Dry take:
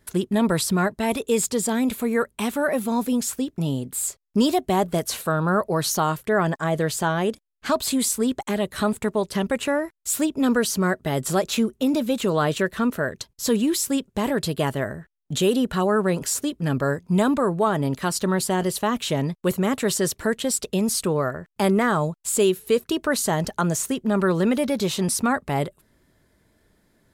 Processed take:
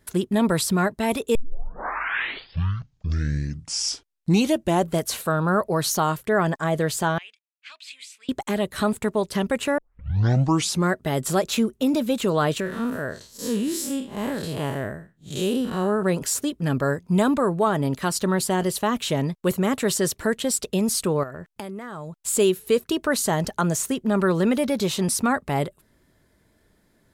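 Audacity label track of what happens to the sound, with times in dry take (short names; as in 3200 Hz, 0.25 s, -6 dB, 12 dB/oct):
1.350000	1.350000	tape start 3.68 s
7.180000	8.290000	ladder band-pass 2700 Hz, resonance 65%
9.780000	9.780000	tape start 1.11 s
12.600000	16.030000	time blur width 0.13 s
21.230000	22.170000	compressor 20:1, threshold -30 dBFS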